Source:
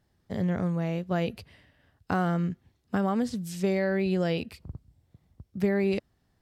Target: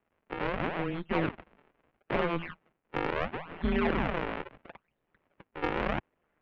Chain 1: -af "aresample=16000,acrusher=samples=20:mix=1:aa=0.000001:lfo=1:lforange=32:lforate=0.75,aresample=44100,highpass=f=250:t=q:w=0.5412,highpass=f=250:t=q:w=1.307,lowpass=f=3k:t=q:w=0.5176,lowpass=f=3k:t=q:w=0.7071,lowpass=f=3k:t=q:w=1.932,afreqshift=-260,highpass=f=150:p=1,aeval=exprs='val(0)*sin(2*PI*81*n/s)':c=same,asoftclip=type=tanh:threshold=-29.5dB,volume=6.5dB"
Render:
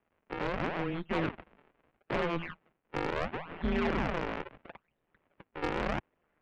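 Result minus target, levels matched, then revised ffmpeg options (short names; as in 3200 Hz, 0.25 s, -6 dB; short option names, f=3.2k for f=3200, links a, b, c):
soft clip: distortion +11 dB
-af "aresample=16000,acrusher=samples=20:mix=1:aa=0.000001:lfo=1:lforange=32:lforate=0.75,aresample=44100,highpass=f=250:t=q:w=0.5412,highpass=f=250:t=q:w=1.307,lowpass=f=3k:t=q:w=0.5176,lowpass=f=3k:t=q:w=0.7071,lowpass=f=3k:t=q:w=1.932,afreqshift=-260,highpass=f=150:p=1,aeval=exprs='val(0)*sin(2*PI*81*n/s)':c=same,asoftclip=type=tanh:threshold=-21.5dB,volume=6.5dB"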